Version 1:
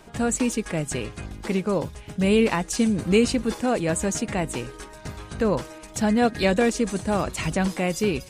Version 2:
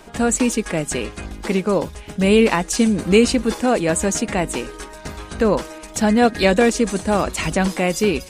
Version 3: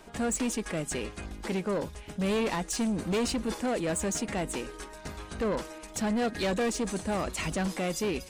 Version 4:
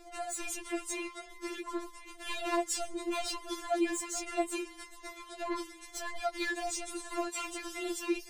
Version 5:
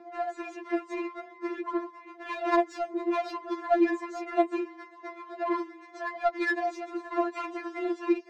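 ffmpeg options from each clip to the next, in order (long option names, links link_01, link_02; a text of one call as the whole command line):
ffmpeg -i in.wav -af "equalizer=frequency=120:width=2.8:gain=-13.5,volume=6dB" out.wav
ffmpeg -i in.wav -af "asoftclip=type=tanh:threshold=-16.5dB,volume=-8dB" out.wav
ffmpeg -i in.wav -af "afftfilt=real='re*4*eq(mod(b,16),0)':imag='im*4*eq(mod(b,16),0)':win_size=2048:overlap=0.75" out.wav
ffmpeg -i in.wav -af "highpass=frequency=200:width=0.5412,highpass=frequency=200:width=1.3066,equalizer=frequency=870:width_type=q:width=4:gain=5,equalizer=frequency=1800:width_type=q:width=4:gain=3,equalizer=frequency=3100:width_type=q:width=4:gain=-8,lowpass=frequency=7000:width=0.5412,lowpass=frequency=7000:width=1.3066,adynamicsmooth=sensitivity=2:basefreq=1600,volume=7dB" out.wav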